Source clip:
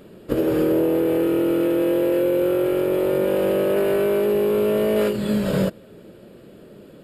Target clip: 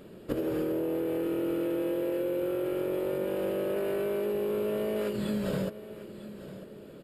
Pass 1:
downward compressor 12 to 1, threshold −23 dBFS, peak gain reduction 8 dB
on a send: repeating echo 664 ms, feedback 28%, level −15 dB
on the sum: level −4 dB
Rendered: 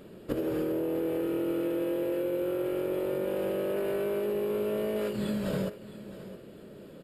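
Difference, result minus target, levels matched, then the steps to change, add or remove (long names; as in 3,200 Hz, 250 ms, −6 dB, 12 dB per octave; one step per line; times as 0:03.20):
echo 285 ms early
change: repeating echo 949 ms, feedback 28%, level −15 dB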